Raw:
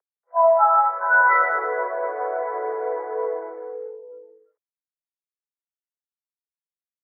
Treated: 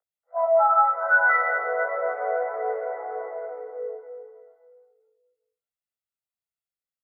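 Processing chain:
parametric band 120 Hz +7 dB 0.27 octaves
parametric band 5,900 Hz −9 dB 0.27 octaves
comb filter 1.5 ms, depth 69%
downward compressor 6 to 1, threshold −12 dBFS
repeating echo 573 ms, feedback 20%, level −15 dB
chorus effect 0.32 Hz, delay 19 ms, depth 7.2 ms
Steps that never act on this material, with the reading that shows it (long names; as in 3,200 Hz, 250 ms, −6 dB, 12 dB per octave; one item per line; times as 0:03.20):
parametric band 120 Hz: nothing at its input below 320 Hz
parametric band 5,900 Hz: nothing at its input above 2,000 Hz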